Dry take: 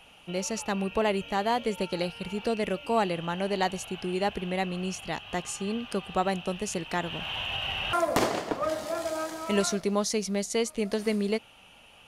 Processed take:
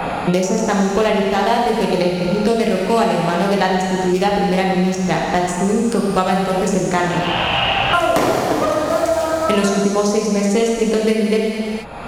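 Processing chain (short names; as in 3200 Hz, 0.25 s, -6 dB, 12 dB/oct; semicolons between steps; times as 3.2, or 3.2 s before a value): Wiener smoothing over 15 samples; non-linear reverb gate 0.49 s falling, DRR -3 dB; three-band squash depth 100%; gain +7.5 dB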